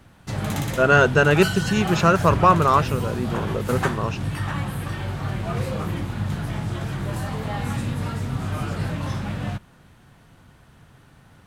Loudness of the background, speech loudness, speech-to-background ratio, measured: −27.5 LKFS, −19.5 LKFS, 8.0 dB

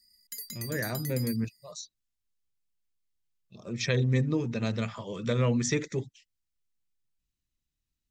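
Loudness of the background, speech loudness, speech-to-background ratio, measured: −39.5 LKFS, −30.0 LKFS, 9.5 dB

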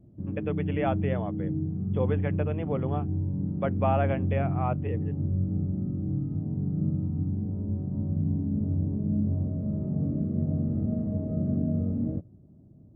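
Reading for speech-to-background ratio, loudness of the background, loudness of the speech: −3.0 dB, −29.5 LKFS, −32.5 LKFS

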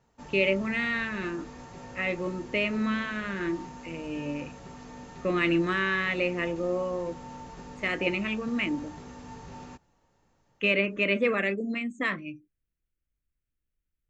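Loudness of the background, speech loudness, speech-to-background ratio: −45.0 LKFS, −28.5 LKFS, 16.5 dB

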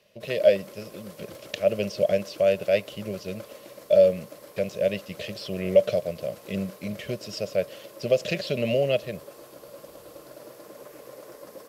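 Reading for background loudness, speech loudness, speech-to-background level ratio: −45.5 LKFS, −26.0 LKFS, 19.5 dB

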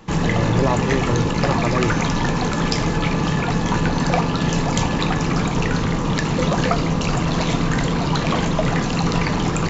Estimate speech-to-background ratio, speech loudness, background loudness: −3.5 dB, −24.0 LKFS, −20.5 LKFS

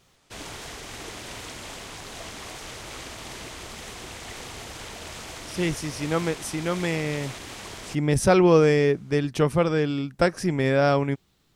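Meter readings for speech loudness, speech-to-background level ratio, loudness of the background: −23.0 LKFS, 14.5 dB, −37.5 LKFS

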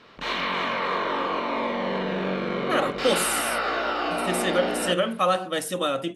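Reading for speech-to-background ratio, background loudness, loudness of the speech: 1.0 dB, −27.0 LKFS, −26.0 LKFS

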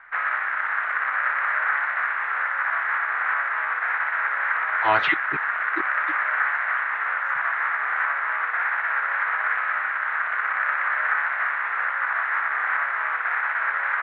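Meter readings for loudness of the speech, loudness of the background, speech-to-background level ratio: −23.5 LKFS, −23.5 LKFS, 0.0 dB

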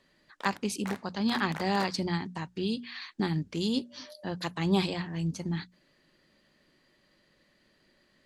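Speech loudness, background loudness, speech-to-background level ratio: −32.0 LKFS, −44.0 LKFS, 12.0 dB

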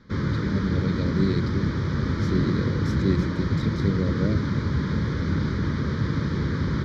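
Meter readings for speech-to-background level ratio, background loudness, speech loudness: −3.0 dB, −26.0 LKFS, −29.0 LKFS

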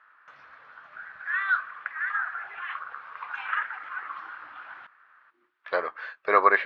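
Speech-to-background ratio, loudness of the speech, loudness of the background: 6.0 dB, −25.5 LKFS, −31.5 LKFS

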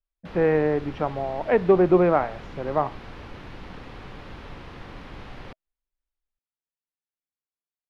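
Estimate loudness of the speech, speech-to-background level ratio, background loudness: −22.5 LKFS, 19.5 dB, −42.0 LKFS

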